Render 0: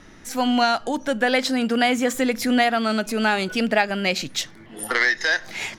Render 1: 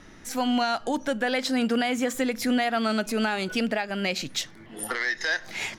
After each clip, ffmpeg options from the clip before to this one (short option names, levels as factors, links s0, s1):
-af "alimiter=limit=0.211:level=0:latency=1:release=243,volume=0.794"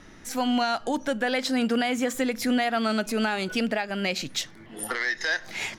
-af anull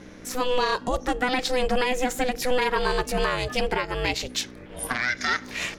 -af "aeval=exprs='val(0)+0.00447*(sin(2*PI*60*n/s)+sin(2*PI*2*60*n/s)/2+sin(2*PI*3*60*n/s)/3+sin(2*PI*4*60*n/s)/4+sin(2*PI*5*60*n/s)/5)':c=same,aeval=exprs='val(0)*sin(2*PI*250*n/s)':c=same,volume=1.68"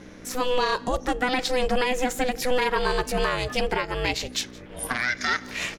-af "aecho=1:1:169:0.0668"